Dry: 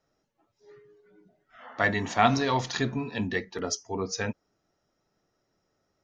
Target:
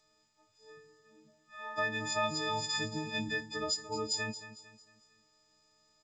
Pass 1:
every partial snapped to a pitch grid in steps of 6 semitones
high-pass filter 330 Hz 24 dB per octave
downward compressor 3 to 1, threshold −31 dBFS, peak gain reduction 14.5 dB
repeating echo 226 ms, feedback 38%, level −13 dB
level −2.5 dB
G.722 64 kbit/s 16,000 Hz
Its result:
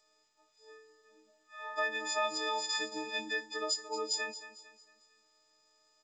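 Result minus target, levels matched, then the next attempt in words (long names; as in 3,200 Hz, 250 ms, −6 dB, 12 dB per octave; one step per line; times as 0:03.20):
250 Hz band −6.0 dB
every partial snapped to a pitch grid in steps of 6 semitones
downward compressor 3 to 1, threshold −31 dBFS, peak gain reduction 14.5 dB
repeating echo 226 ms, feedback 38%, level −13 dB
level −2.5 dB
G.722 64 kbit/s 16,000 Hz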